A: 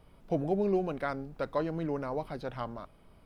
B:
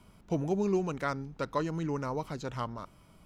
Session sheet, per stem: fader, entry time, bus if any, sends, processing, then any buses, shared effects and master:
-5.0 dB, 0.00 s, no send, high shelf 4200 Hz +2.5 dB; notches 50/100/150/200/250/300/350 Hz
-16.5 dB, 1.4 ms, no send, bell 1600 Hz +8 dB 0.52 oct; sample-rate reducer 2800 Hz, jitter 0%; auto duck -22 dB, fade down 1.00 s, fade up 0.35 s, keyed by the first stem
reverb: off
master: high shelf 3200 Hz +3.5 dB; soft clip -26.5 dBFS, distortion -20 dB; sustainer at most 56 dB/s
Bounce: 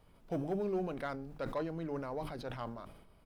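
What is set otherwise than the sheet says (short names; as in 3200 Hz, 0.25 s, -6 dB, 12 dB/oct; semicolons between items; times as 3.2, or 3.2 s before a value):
stem B: polarity flipped; master: missing high shelf 3200 Hz +3.5 dB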